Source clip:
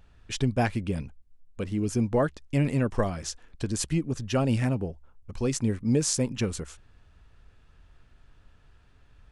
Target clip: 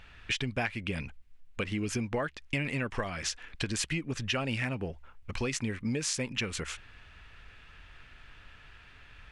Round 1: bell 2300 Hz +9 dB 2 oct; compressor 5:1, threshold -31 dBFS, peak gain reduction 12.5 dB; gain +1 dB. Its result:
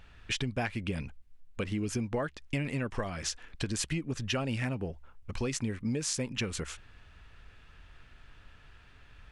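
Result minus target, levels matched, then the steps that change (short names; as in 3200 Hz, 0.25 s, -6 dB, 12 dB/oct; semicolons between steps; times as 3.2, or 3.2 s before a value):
2000 Hz band -3.5 dB
change: bell 2300 Hz +16 dB 2 oct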